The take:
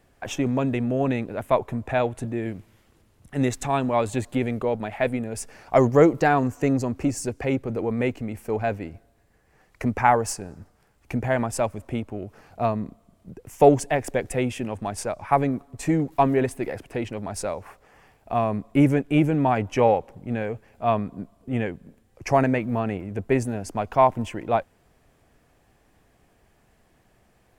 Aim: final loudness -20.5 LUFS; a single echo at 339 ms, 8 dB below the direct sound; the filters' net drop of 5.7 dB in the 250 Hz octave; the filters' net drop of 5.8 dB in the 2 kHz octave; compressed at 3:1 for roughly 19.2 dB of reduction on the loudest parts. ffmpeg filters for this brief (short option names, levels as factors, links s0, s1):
-af "equalizer=f=250:t=o:g=-7,equalizer=f=2000:t=o:g=-7.5,acompressor=threshold=0.01:ratio=3,aecho=1:1:339:0.398,volume=10"